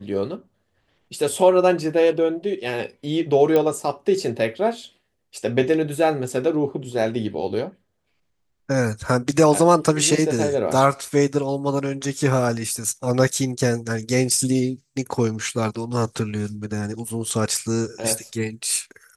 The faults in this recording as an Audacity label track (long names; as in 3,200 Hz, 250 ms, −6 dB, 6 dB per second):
3.560000	3.560000	click −9 dBFS